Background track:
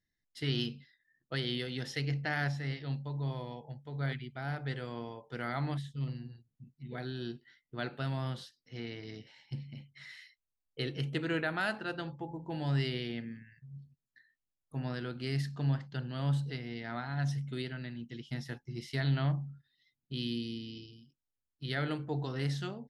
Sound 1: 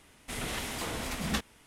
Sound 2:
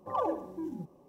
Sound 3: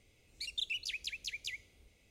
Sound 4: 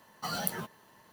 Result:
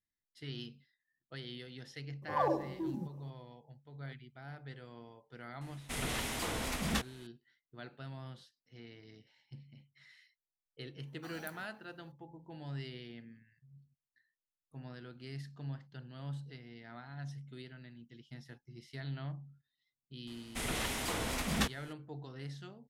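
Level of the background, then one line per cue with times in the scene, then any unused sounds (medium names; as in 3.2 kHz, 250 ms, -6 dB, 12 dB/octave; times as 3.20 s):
background track -11 dB
2.22 s: add 2 -0.5 dB
5.61 s: add 1 -1 dB + saturation -21 dBFS
11.00 s: add 4 -17 dB
20.27 s: add 1 -0.5 dB
not used: 3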